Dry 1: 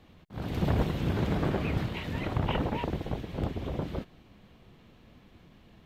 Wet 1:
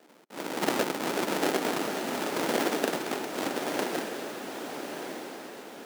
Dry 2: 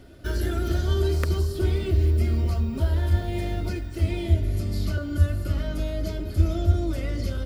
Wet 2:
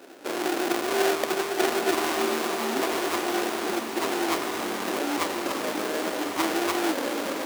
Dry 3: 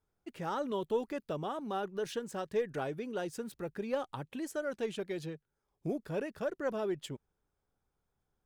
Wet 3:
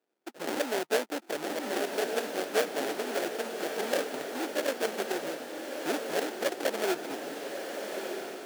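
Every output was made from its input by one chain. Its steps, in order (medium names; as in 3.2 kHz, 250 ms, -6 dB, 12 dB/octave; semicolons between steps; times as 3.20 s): sample-rate reducer 1.1 kHz, jitter 20%; high-pass 280 Hz 24 dB/octave; echo that smears into a reverb 1237 ms, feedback 41%, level -5 dB; trim +5 dB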